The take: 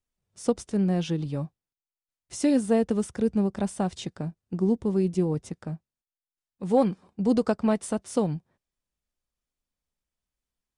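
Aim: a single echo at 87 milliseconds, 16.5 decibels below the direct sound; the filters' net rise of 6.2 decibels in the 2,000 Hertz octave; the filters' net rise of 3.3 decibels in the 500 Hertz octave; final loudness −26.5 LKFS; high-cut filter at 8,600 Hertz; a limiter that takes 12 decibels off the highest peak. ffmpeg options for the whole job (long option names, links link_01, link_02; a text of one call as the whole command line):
ffmpeg -i in.wav -af "lowpass=8600,equalizer=frequency=500:width_type=o:gain=3.5,equalizer=frequency=2000:width_type=o:gain=8,alimiter=limit=-20dB:level=0:latency=1,aecho=1:1:87:0.15,volume=4dB" out.wav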